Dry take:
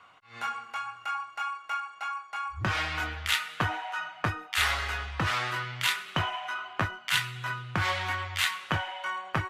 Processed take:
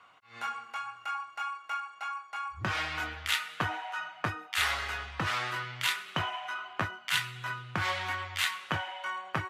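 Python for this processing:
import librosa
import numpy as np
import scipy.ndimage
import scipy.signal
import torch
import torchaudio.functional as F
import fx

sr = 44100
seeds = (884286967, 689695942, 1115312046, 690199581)

y = fx.highpass(x, sr, hz=110.0, slope=6)
y = y * librosa.db_to_amplitude(-2.5)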